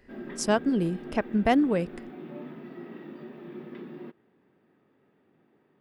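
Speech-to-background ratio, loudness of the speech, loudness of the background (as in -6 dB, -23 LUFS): 16.5 dB, -26.0 LUFS, -42.5 LUFS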